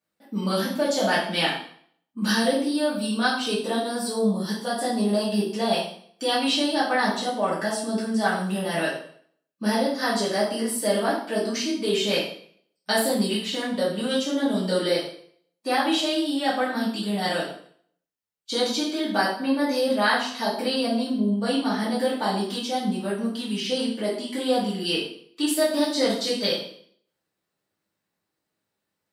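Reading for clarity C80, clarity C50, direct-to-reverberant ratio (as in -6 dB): 8.0 dB, 3.5 dB, -9.0 dB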